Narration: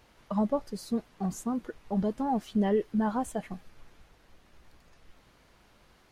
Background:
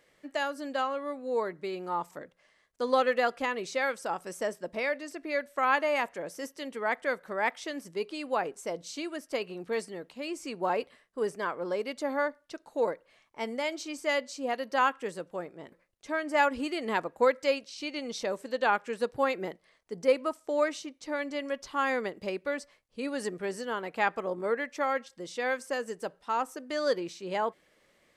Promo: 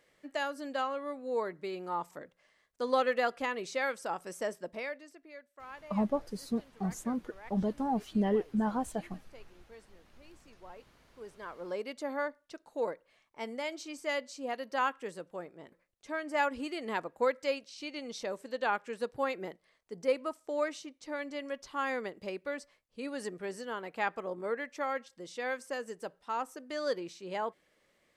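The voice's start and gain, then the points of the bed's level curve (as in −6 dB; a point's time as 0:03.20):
5.60 s, −2.5 dB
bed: 0:04.63 −3 dB
0:05.49 −22 dB
0:11.02 −22 dB
0:11.75 −5 dB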